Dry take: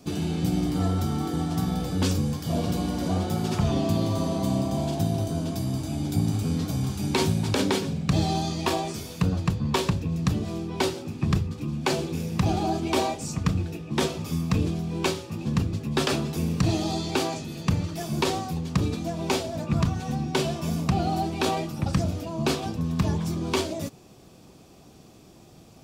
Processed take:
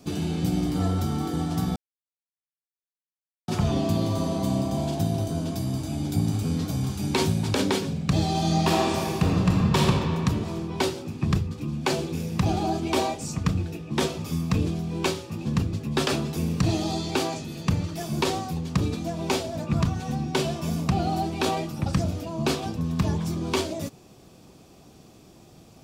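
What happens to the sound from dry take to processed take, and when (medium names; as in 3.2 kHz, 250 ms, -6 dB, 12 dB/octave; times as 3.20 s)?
1.76–3.48 s: mute
8.30–9.80 s: reverb throw, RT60 2.5 s, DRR -2.5 dB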